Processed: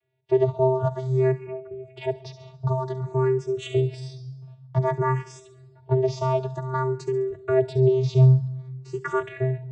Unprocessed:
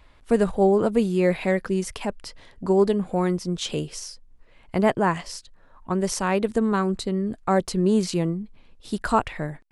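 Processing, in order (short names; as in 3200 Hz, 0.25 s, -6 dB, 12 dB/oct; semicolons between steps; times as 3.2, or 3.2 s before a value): gate with hold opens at -40 dBFS; in parallel at +2.5 dB: compressor, threshold -28 dBFS, peak gain reduction 13.5 dB; 1.31–1.97 on the sum: octave resonator C#, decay 0.13 s; vocoder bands 16, square 130 Hz; thin delay 69 ms, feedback 43%, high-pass 5500 Hz, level -7.5 dB; on a send at -16.5 dB: reverb RT60 1.5 s, pre-delay 49 ms; on the sum: endless phaser +0.53 Hz; gain +2 dB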